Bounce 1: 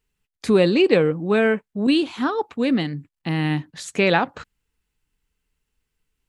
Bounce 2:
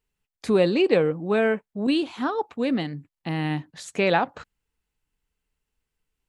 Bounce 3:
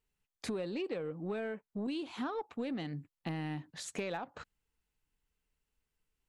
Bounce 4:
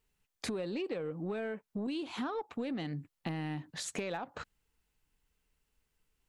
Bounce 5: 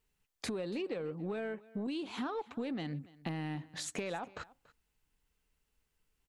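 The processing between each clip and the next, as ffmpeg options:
-af "equalizer=f=700:w=1.2:g=4.5,volume=-5dB"
-af "acompressor=threshold=-29dB:ratio=20,aeval=exprs='0.0891*(cos(1*acos(clip(val(0)/0.0891,-1,1)))-cos(1*PI/2))+0.00398*(cos(5*acos(clip(val(0)/0.0891,-1,1)))-cos(5*PI/2))':c=same,volume=-5.5dB"
-af "acompressor=threshold=-43dB:ratio=2,volume=5.5dB"
-af "aecho=1:1:285:0.0891,volume=-1dB"

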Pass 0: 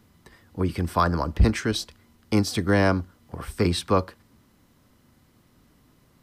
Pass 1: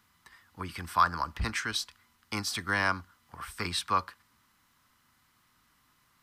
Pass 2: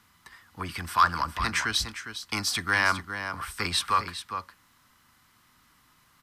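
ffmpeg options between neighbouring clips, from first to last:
-af "lowshelf=f=760:t=q:w=1.5:g=-12.5,volume=-2.5dB"
-filter_complex "[0:a]aecho=1:1:407:0.282,acrossover=split=1000[a][b];[a]asoftclip=type=tanh:threshold=-35dB[c];[c][b]amix=inputs=2:normalize=0,aresample=32000,aresample=44100,volume=5.5dB"

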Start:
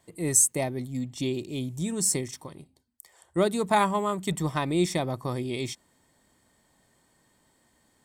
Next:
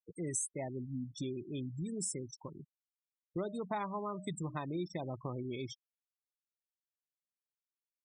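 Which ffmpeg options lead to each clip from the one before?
-af "bandreject=f=304.9:t=h:w=4,bandreject=f=609.8:t=h:w=4,bandreject=f=914.7:t=h:w=4,bandreject=f=1.2196k:t=h:w=4,bandreject=f=1.5245k:t=h:w=4,bandreject=f=1.8294k:t=h:w=4,bandreject=f=2.1343k:t=h:w=4,acompressor=threshold=-35dB:ratio=3,afftfilt=real='re*gte(hypot(re,im),0.0178)':imag='im*gte(hypot(re,im),0.0178)':win_size=1024:overlap=0.75,volume=-3dB"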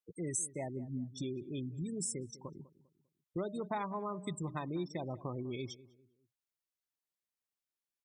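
-filter_complex "[0:a]asplit=2[a][b];[b]adelay=199,lowpass=f=1.1k:p=1,volume=-17dB,asplit=2[c][d];[d]adelay=199,lowpass=f=1.1k:p=1,volume=0.36,asplit=2[e][f];[f]adelay=199,lowpass=f=1.1k:p=1,volume=0.36[g];[a][c][e][g]amix=inputs=4:normalize=0"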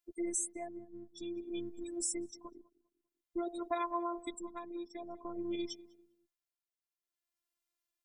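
-af "tremolo=f=0.52:d=0.68,afftfilt=real='hypot(re,im)*cos(PI*b)':imag='0':win_size=512:overlap=0.75,volume=6.5dB"

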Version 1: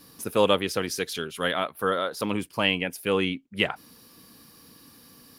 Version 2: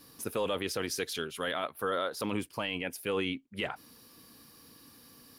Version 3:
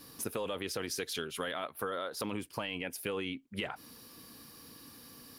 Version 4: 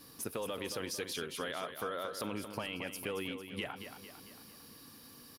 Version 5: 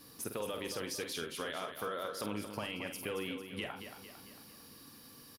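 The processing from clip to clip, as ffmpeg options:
-af "equalizer=f=180:w=4:g=-4.5,alimiter=limit=-17.5dB:level=0:latency=1:release=13,volume=-3.5dB"
-af "acompressor=threshold=-36dB:ratio=6,volume=3dB"
-af "aecho=1:1:225|450|675|900|1125|1350:0.355|0.185|0.0959|0.0499|0.0259|0.0135,volume=-2.5dB"
-filter_complex "[0:a]asplit=2[a][b];[b]adelay=48,volume=-8dB[c];[a][c]amix=inputs=2:normalize=0,volume=-1dB"

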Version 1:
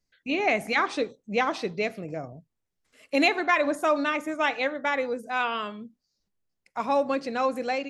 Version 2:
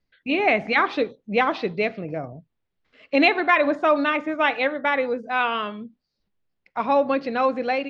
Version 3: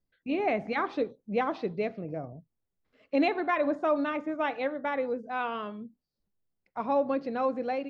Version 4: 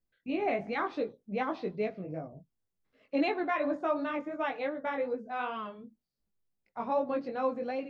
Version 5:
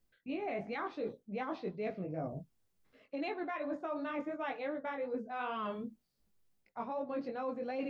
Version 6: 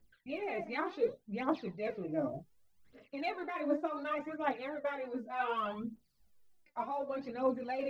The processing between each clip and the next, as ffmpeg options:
-af "lowpass=f=4k:w=0.5412,lowpass=f=4k:w=1.3066,volume=4.5dB"
-af "equalizer=f=2.8k:t=o:w=2.4:g=-10,volume=-5dB"
-af "flanger=delay=18.5:depth=2.9:speed=2.7"
-af "alimiter=level_in=0.5dB:limit=-24dB:level=0:latency=1:release=275,volume=-0.5dB,areverse,acompressor=threshold=-42dB:ratio=10,areverse,volume=7dB"
-af "aphaser=in_gain=1:out_gain=1:delay=3.5:decay=0.68:speed=0.67:type=triangular"

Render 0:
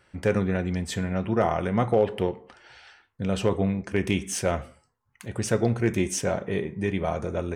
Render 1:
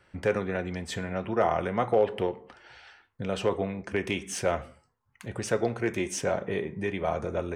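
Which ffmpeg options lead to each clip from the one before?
-filter_complex "[0:a]highshelf=f=5.6k:g=-7.5,acrossover=split=350|1400[a][b][c];[a]acompressor=threshold=-34dB:ratio=6[d];[d][b][c]amix=inputs=3:normalize=0"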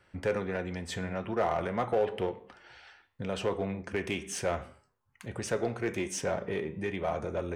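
-filter_complex "[0:a]flanger=delay=9.8:depth=3.3:regen=88:speed=0.83:shape=triangular,asplit=2[a][b];[b]asoftclip=type=hard:threshold=-31dB,volume=-4dB[c];[a][c]amix=inputs=2:normalize=0,volume=-2dB"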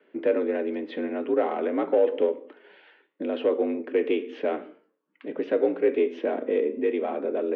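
-af "highpass=f=220:t=q:w=0.5412,highpass=f=220:t=q:w=1.307,lowpass=f=3.4k:t=q:w=0.5176,lowpass=f=3.4k:t=q:w=0.7071,lowpass=f=3.4k:t=q:w=1.932,afreqshift=60,lowshelf=f=570:t=q:w=1.5:g=10.5"

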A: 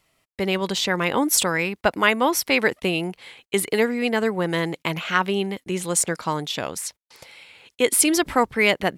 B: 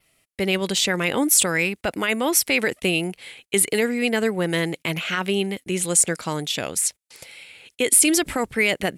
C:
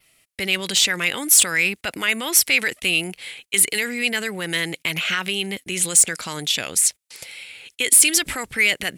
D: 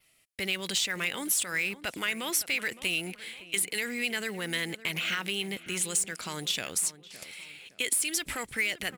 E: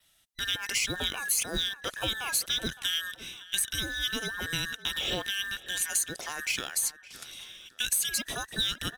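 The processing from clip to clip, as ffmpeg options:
-af "adynamicequalizer=threshold=0.00891:dfrequency=7500:dqfactor=2.5:tfrequency=7500:tqfactor=2.5:attack=5:release=100:ratio=0.375:range=2.5:mode=boostabove:tftype=bell,alimiter=limit=-12dB:level=0:latency=1:release=20,equalizer=f=1k:t=o:w=0.67:g=-7,equalizer=f=2.5k:t=o:w=0.67:g=3,equalizer=f=10k:t=o:w=0.67:g=8,volume=1dB"
-filter_complex "[0:a]acrossover=split=1500[a][b];[a]alimiter=level_in=0.5dB:limit=-24dB:level=0:latency=1,volume=-0.5dB[c];[b]acontrast=39[d];[c][d]amix=inputs=2:normalize=0,asoftclip=type=tanh:threshold=-3.5dB"
-filter_complex "[0:a]acompressor=threshold=-18dB:ratio=8,acrusher=bits=5:mode=log:mix=0:aa=0.000001,asplit=2[a][b];[b]adelay=563,lowpass=f=1.8k:p=1,volume=-15dB,asplit=2[c][d];[d]adelay=563,lowpass=f=1.8k:p=1,volume=0.4,asplit=2[e][f];[f]adelay=563,lowpass=f=1.8k:p=1,volume=0.4,asplit=2[g][h];[h]adelay=563,lowpass=f=1.8k:p=1,volume=0.4[i];[a][c][e][g][i]amix=inputs=5:normalize=0,volume=-7dB"
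-af "afftfilt=real='real(if(between(b,1,1012),(2*floor((b-1)/92)+1)*92-b,b),0)':imag='imag(if(between(b,1,1012),(2*floor((b-1)/92)+1)*92-b,b),0)*if(between(b,1,1012),-1,1)':win_size=2048:overlap=0.75"

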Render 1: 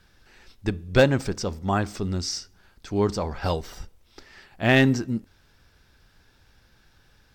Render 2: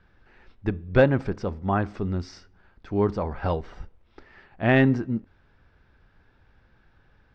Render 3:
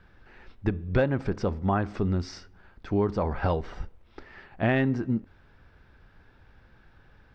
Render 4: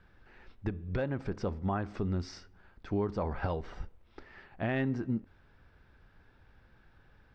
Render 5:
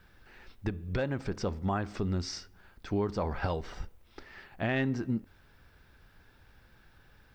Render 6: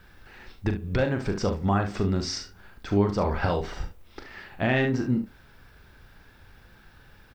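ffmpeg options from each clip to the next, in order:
-af "lowpass=2k"
-af "acompressor=threshold=-25dB:ratio=4,volume=3.5dB"
-af "alimiter=limit=-17dB:level=0:latency=1:release=216,volume=-5dB"
-af "crystalizer=i=3:c=0,volume=1dB"
-af "aecho=1:1:40|70:0.422|0.266,volume=6dB"

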